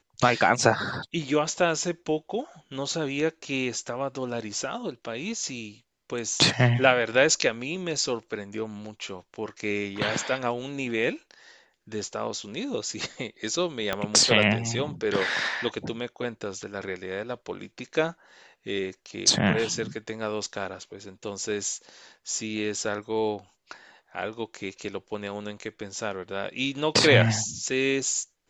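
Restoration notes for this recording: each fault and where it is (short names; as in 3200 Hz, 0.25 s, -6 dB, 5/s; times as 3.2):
13.93 pop -12 dBFS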